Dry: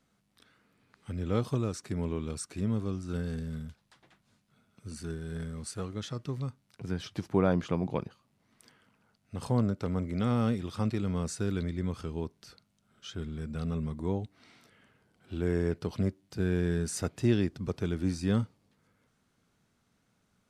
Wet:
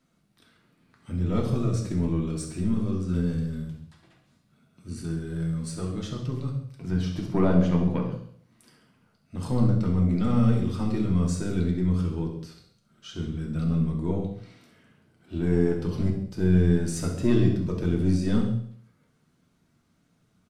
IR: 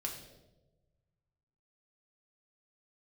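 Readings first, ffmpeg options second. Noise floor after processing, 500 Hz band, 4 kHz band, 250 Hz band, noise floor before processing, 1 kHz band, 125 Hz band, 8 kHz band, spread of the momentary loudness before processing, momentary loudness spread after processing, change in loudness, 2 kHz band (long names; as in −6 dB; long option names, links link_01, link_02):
−68 dBFS, +3.5 dB, +1.5 dB, +7.0 dB, −74 dBFS, +1.5 dB, +7.5 dB, +1.5 dB, 13 LU, 13 LU, +6.5 dB, +1.0 dB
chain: -filter_complex "[0:a]equalizer=frequency=210:width=1.3:gain=5.5,aeval=exprs='0.299*(cos(1*acos(clip(val(0)/0.299,-1,1)))-cos(1*PI/2))+0.0266*(cos(4*acos(clip(val(0)/0.299,-1,1)))-cos(4*PI/2))':channel_layout=same,aecho=1:1:67|134|201|268|335:0.266|0.133|0.0665|0.0333|0.0166[link_01];[1:a]atrim=start_sample=2205,afade=type=out:start_time=0.24:duration=0.01,atrim=end_sample=11025[link_02];[link_01][link_02]afir=irnorm=-1:irlink=0,volume=1.5dB"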